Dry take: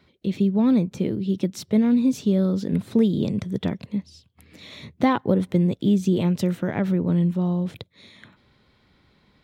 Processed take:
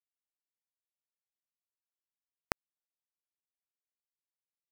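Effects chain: low-pass 1.1 kHz 6 dB/octave; comb 3.7 ms, depth 89%; transient shaper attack -8 dB, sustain -2 dB; compression 6:1, threshold -41 dBFS, peak gain reduction 26 dB; bit crusher 5-bit; speed mistake 7.5 ips tape played at 15 ips; trim +14.5 dB

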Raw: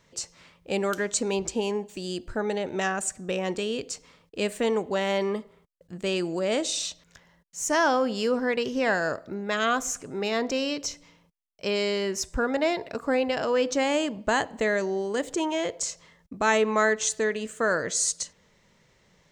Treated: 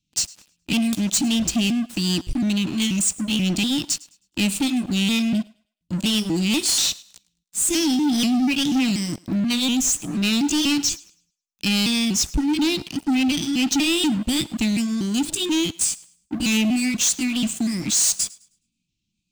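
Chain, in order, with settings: pitch shift switched off and on +2.5 st, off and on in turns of 242 ms; Chebyshev band-stop 320–2500 Hz, order 5; waveshaping leveller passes 5; on a send: thinning echo 105 ms, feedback 28%, level -21.5 dB; on the sum: trim -2.5 dB

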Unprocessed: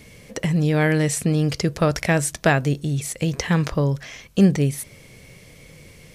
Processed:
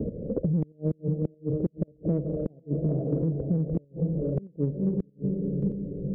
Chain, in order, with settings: steep low-pass 560 Hz 48 dB/octave; peaking EQ 120 Hz -5.5 dB 0.4 oct; on a send: echo that smears into a reverb 488 ms, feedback 41%, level -5 dB; on the sum: square tremolo 1.6 Hz, depth 60%, duty 15%; inverted gate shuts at -19 dBFS, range -38 dB; in parallel at -9.5 dB: saturation -27.5 dBFS, distortion -12 dB; on the sum: three bands compressed up and down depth 100%; trim +2 dB

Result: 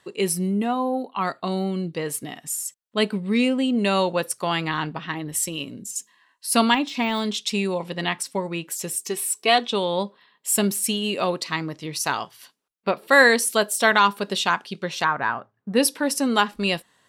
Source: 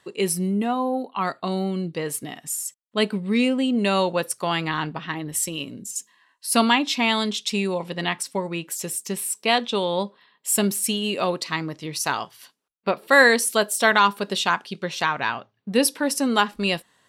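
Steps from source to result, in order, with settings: 6.74–7.33 s: de-esser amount 75%; 8.96–9.73 s: comb 2.7 ms, depth 61%; 15.04–15.77 s: resonant high shelf 2.1 kHz -10 dB, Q 1.5

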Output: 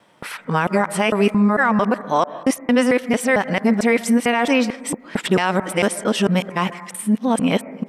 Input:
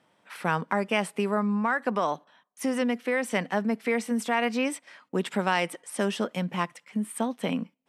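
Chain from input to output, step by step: time reversed locally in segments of 224 ms; on a send at -16.5 dB: steep low-pass 2.3 kHz 72 dB/octave + reverberation RT60 1.0 s, pre-delay 80 ms; on the sum: loudness maximiser +16.5 dB; trim -5.5 dB

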